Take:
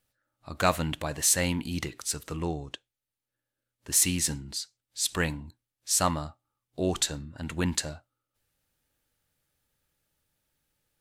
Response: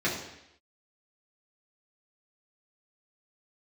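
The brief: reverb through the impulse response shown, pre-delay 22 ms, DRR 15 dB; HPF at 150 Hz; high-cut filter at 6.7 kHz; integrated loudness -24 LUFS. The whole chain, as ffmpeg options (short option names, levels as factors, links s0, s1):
-filter_complex "[0:a]highpass=150,lowpass=6700,asplit=2[s0][s1];[1:a]atrim=start_sample=2205,adelay=22[s2];[s1][s2]afir=irnorm=-1:irlink=0,volume=0.0501[s3];[s0][s3]amix=inputs=2:normalize=0,volume=2.11"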